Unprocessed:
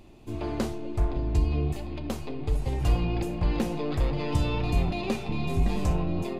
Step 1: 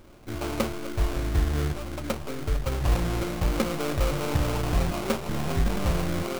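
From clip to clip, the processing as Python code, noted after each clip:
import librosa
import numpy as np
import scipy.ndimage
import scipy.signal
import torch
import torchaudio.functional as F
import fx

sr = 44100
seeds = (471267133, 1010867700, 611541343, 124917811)

y = fx.small_body(x, sr, hz=(550.0, 1100.0, 2400.0), ring_ms=45, db=10)
y = fx.sample_hold(y, sr, seeds[0], rate_hz=1800.0, jitter_pct=20)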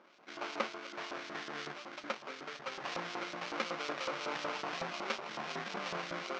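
y = scipy.signal.sosfilt(scipy.signal.ellip(3, 1.0, 40, [170.0, 6000.0], 'bandpass', fs=sr, output='sos'), x)
y = fx.filter_lfo_bandpass(y, sr, shape='saw_up', hz=5.4, low_hz=1000.0, high_hz=4400.0, q=0.78)
y = y * librosa.db_to_amplitude(-1.5)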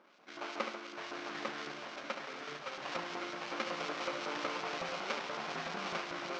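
y = fx.echo_multitap(x, sr, ms=(72, 141, 849), db=(-7.0, -13.0, -3.5))
y = y * librosa.db_to_amplitude(-2.0)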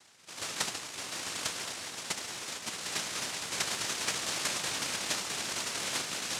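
y = fx.noise_vocoder(x, sr, seeds[1], bands=1)
y = y * librosa.db_to_amplitude(4.5)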